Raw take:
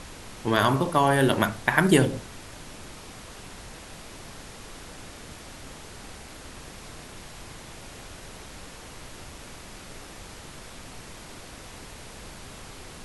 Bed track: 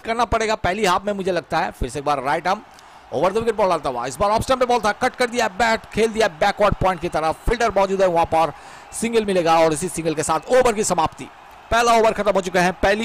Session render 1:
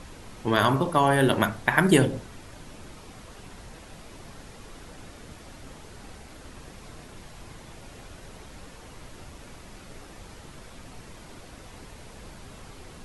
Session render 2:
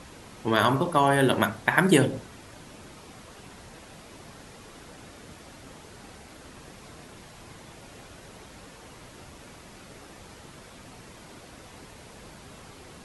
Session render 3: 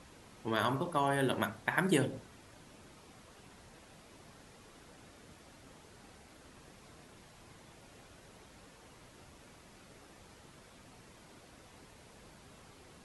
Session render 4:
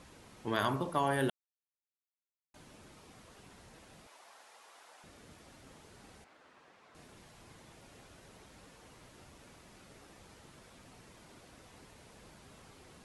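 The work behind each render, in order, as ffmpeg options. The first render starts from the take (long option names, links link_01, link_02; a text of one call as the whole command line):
ffmpeg -i in.wav -af "afftdn=noise_reduction=6:noise_floor=-44" out.wav
ffmpeg -i in.wav -af "highpass=frequency=100:poles=1" out.wav
ffmpeg -i in.wav -af "volume=-10dB" out.wav
ffmpeg -i in.wav -filter_complex "[0:a]asettb=1/sr,asplit=3[link_01][link_02][link_03];[link_01]atrim=end=4.074[link_04];[link_02]atrim=start=4.07:end=5.04,asetpts=PTS-STARTPTS,afade=type=in:duration=0.004:curve=qsin,afade=type=out:start_time=0.966:duration=0.004:curve=qsin,highpass=frequency=780:width_type=q:width=1.5[link_05];[link_03]atrim=start=5.036[link_06];[link_04][link_05]acrossfade=duration=0.004:curve1=hsin:curve2=qsin[link_07];[link_07][link_06]acrossfade=duration=0.004:curve1=qsin:curve2=hsin,asettb=1/sr,asplit=3[link_08][link_09][link_10];[link_08]atrim=end=6.244[link_11];[link_09]atrim=start=6.24:end=6.95,asetpts=PTS-STARTPTS,afade=type=in:duration=0.004:curve=qsin,afade=type=out:start_time=0.706:duration=0.004:curve=qsin,bandpass=frequency=1200:width_type=q:width=0.64[link_12];[link_10]atrim=start=6.946[link_13];[link_11][link_12]acrossfade=duration=0.004:curve1=hsin:curve2=qsin[link_14];[link_14][link_13]acrossfade=duration=0.004:curve1=qsin:curve2=hsin,asplit=3[link_15][link_16][link_17];[link_15]atrim=end=1.3,asetpts=PTS-STARTPTS,afade=type=out:start_time=1.296:duration=0.004:curve=hsin[link_18];[link_16]atrim=start=1.3:end=2.54,asetpts=PTS-STARTPTS,volume=0[link_19];[link_17]atrim=start=2.54,asetpts=PTS-STARTPTS,afade=type=in:duration=0.004:curve=hsin[link_20];[link_18][link_19][link_20]concat=n=3:v=0:a=1" out.wav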